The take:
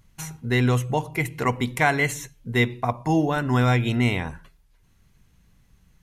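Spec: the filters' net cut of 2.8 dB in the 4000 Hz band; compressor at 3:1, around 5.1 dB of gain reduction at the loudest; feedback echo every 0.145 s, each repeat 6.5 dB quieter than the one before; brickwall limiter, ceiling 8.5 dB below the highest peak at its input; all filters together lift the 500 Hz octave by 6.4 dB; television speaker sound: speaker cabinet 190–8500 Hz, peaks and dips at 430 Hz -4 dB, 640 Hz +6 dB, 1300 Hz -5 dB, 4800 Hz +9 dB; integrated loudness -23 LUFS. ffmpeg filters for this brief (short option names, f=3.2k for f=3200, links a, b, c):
-af "equalizer=f=500:t=o:g=7.5,equalizer=f=4k:t=o:g=-5.5,acompressor=threshold=-20dB:ratio=3,alimiter=limit=-18.5dB:level=0:latency=1,highpass=f=190:w=0.5412,highpass=f=190:w=1.3066,equalizer=f=430:t=q:w=4:g=-4,equalizer=f=640:t=q:w=4:g=6,equalizer=f=1.3k:t=q:w=4:g=-5,equalizer=f=4.8k:t=q:w=4:g=9,lowpass=f=8.5k:w=0.5412,lowpass=f=8.5k:w=1.3066,aecho=1:1:145|290|435|580|725|870:0.473|0.222|0.105|0.0491|0.0231|0.0109,volume=6.5dB"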